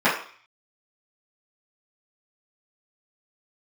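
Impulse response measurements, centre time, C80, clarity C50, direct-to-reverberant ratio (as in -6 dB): 33 ms, 10.0 dB, 6.0 dB, -13.0 dB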